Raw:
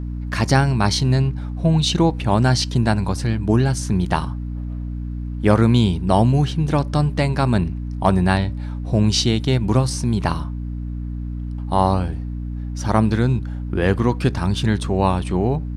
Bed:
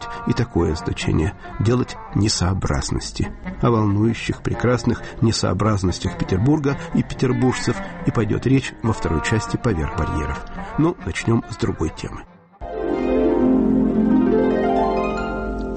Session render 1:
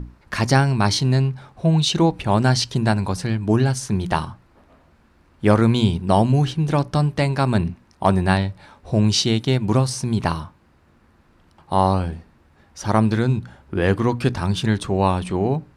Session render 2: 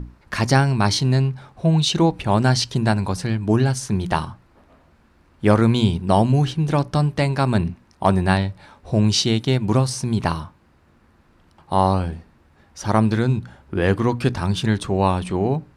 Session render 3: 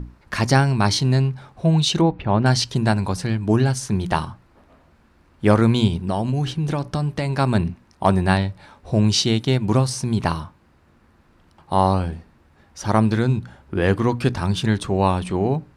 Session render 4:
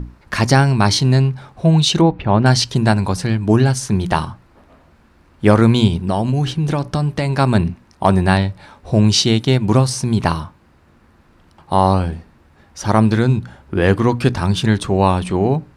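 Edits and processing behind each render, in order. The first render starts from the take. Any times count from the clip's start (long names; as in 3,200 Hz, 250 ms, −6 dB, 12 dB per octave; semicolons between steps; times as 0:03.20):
mains-hum notches 60/120/180/240/300 Hz
no processing that can be heard
0:02.01–0:02.46: high-frequency loss of the air 320 metres; 0:05.87–0:07.33: downward compressor, threshold −18 dBFS
level +4.5 dB; brickwall limiter −1 dBFS, peak gain reduction 2 dB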